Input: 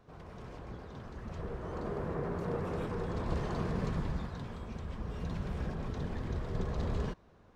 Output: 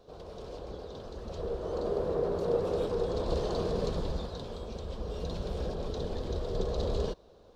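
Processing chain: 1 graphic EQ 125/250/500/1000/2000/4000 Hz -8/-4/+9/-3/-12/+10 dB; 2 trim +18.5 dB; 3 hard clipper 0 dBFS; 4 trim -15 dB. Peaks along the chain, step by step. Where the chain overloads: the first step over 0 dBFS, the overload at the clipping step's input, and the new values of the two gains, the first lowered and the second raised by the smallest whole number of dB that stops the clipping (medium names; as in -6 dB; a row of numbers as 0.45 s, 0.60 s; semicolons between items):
-21.0 dBFS, -2.5 dBFS, -2.5 dBFS, -17.5 dBFS; nothing clips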